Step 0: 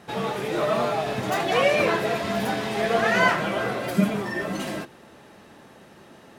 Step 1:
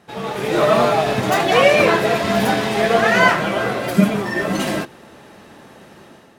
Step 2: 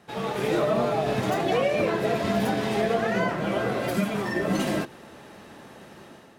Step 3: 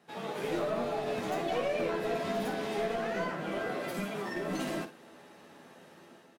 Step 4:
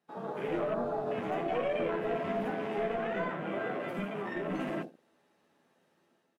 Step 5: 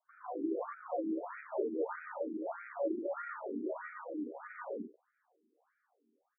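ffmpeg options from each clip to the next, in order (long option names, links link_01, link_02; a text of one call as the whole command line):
ffmpeg -i in.wav -filter_complex "[0:a]dynaudnorm=framelen=110:gausssize=7:maxgain=9.5dB,asplit=2[link_01][link_02];[link_02]aeval=exprs='sgn(val(0))*max(abs(val(0))-0.0299,0)':channel_layout=same,volume=-4dB[link_03];[link_01][link_03]amix=inputs=2:normalize=0,volume=-3.5dB" out.wav
ffmpeg -i in.wav -filter_complex "[0:a]acrossover=split=620[link_01][link_02];[link_01]alimiter=limit=-14dB:level=0:latency=1:release=326[link_03];[link_02]acompressor=threshold=-27dB:ratio=6[link_04];[link_03][link_04]amix=inputs=2:normalize=0,volume=-3dB" out.wav
ffmpeg -i in.wav -filter_complex "[0:a]highpass=160,aeval=exprs='clip(val(0),-1,0.0841)':channel_layout=same,asplit=2[link_01][link_02];[link_02]aecho=0:1:12|56:0.531|0.316[link_03];[link_01][link_03]amix=inputs=2:normalize=0,volume=-9dB" out.wav
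ffmpeg -i in.wav -af "afwtdn=0.00891" out.wav
ffmpeg -i in.wav -af "aemphasis=mode=reproduction:type=75fm,highpass=frequency=210:width_type=q:width=0.5412,highpass=frequency=210:width_type=q:width=1.307,lowpass=frequency=2500:width_type=q:width=0.5176,lowpass=frequency=2500:width_type=q:width=0.7071,lowpass=frequency=2500:width_type=q:width=1.932,afreqshift=-110,afftfilt=real='re*between(b*sr/1024,290*pow(1800/290,0.5+0.5*sin(2*PI*1.6*pts/sr))/1.41,290*pow(1800/290,0.5+0.5*sin(2*PI*1.6*pts/sr))*1.41)':imag='im*between(b*sr/1024,290*pow(1800/290,0.5+0.5*sin(2*PI*1.6*pts/sr))/1.41,290*pow(1800/290,0.5+0.5*sin(2*PI*1.6*pts/sr))*1.41)':win_size=1024:overlap=0.75,volume=1dB" out.wav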